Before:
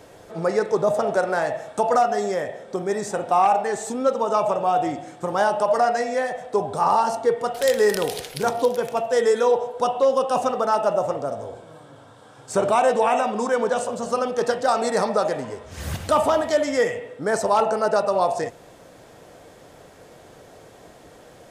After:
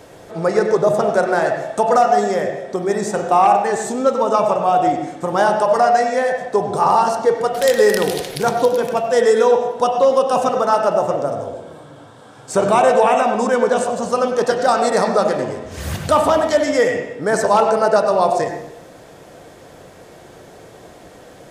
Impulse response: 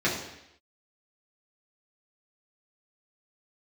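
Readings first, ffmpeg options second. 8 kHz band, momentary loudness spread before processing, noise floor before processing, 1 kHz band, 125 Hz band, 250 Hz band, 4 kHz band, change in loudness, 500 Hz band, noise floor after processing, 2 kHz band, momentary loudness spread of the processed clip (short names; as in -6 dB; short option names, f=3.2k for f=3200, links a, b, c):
+4.5 dB, 9 LU, -48 dBFS, +5.5 dB, +6.5 dB, +6.0 dB, +5.0 dB, +5.5 dB, +5.5 dB, -42 dBFS, +5.5 dB, 8 LU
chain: -filter_complex "[0:a]asplit=2[a][b];[1:a]atrim=start_sample=2205,adelay=90[c];[b][c]afir=irnorm=-1:irlink=0,volume=-20dB[d];[a][d]amix=inputs=2:normalize=0,volume=4.5dB"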